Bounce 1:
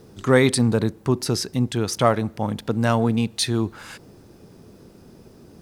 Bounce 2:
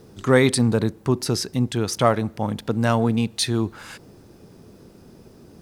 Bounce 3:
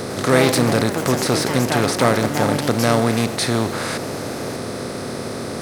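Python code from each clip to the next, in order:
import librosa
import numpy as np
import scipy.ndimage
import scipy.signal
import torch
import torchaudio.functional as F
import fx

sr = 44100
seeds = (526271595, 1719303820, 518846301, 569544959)

y1 = x
y2 = fx.bin_compress(y1, sr, power=0.4)
y2 = fx.echo_pitch(y2, sr, ms=103, semitones=4, count=3, db_per_echo=-6.0)
y2 = y2 * librosa.db_to_amplitude(-2.5)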